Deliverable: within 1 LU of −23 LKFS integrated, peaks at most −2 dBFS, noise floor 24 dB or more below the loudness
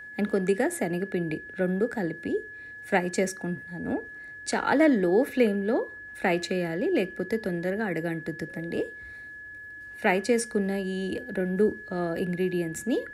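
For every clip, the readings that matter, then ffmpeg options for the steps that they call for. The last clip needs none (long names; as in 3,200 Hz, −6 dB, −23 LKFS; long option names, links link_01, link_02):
interfering tone 1,700 Hz; level of the tone −40 dBFS; integrated loudness −28.0 LKFS; sample peak −10.0 dBFS; target loudness −23.0 LKFS
→ -af "bandreject=frequency=1700:width=30"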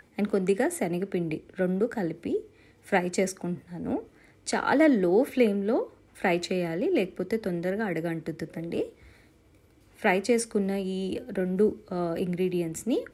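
interfering tone none found; integrated loudness −28.0 LKFS; sample peak −10.5 dBFS; target loudness −23.0 LKFS
→ -af "volume=5dB"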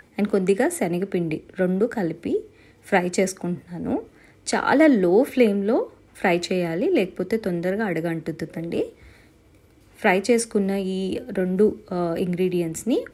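integrated loudness −23.0 LKFS; sample peak −5.5 dBFS; background noise floor −54 dBFS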